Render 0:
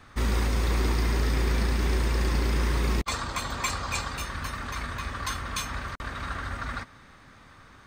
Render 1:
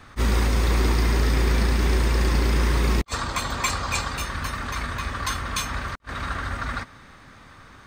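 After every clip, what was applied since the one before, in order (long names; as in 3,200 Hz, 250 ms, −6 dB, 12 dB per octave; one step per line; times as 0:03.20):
level that may rise only so fast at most 480 dB per second
level +4.5 dB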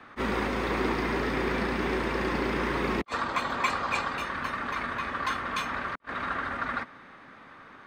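three-way crossover with the lows and the highs turned down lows −19 dB, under 180 Hz, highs −17 dB, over 3,200 Hz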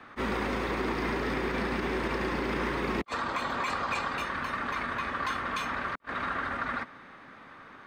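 brickwall limiter −21.5 dBFS, peak gain reduction 8 dB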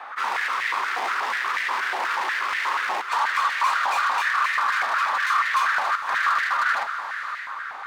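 hard clipping −34 dBFS, distortion −7 dB
feedback delay with all-pass diffusion 568 ms, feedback 41%, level −9.5 dB
high-pass on a step sequencer 8.3 Hz 800–1,900 Hz
level +7.5 dB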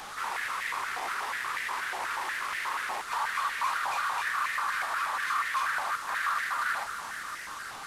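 linear delta modulator 64 kbit/s, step −28 dBFS
level −8 dB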